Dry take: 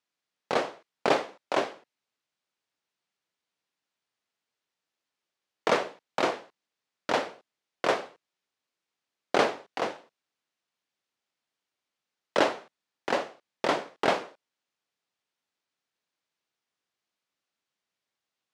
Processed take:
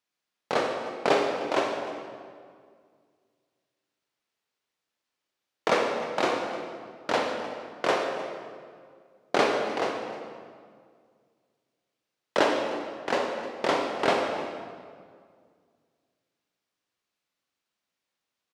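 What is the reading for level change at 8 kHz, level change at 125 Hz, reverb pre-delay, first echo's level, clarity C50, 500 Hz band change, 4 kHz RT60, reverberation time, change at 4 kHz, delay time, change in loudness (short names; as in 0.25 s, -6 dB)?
+1.5 dB, +2.0 dB, 27 ms, -16.5 dB, 3.0 dB, +3.0 dB, 1.4 s, 2.0 s, +2.0 dB, 0.306 s, +1.0 dB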